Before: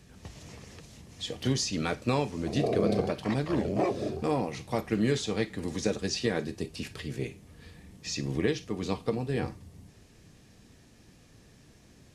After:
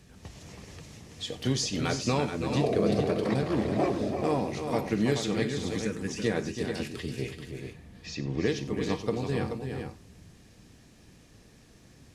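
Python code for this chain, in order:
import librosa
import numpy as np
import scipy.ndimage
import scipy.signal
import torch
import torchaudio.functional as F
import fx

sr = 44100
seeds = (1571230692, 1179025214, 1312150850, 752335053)

p1 = fx.fixed_phaser(x, sr, hz=1700.0, stages=4, at=(5.82, 6.22))
p2 = fx.air_absorb(p1, sr, metres=130.0, at=(7.73, 8.46))
y = p2 + fx.echo_multitap(p2, sr, ms=(93, 331, 431), db=(-17.5, -7.5, -7.5), dry=0)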